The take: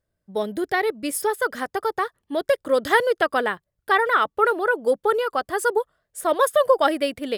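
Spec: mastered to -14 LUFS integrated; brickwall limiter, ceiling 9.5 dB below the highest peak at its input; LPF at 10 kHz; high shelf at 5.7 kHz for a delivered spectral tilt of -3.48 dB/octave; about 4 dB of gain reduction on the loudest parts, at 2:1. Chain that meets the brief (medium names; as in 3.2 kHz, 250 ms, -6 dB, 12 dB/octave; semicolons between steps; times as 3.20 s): low-pass 10 kHz; treble shelf 5.7 kHz -6 dB; compression 2:1, threshold -20 dBFS; trim +15 dB; peak limiter -4 dBFS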